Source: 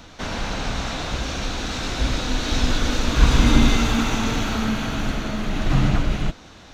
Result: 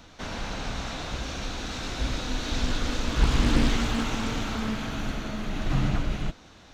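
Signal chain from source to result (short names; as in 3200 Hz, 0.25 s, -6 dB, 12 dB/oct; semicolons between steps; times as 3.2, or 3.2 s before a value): 2.5–4.91 Doppler distortion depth 0.93 ms; gain -6.5 dB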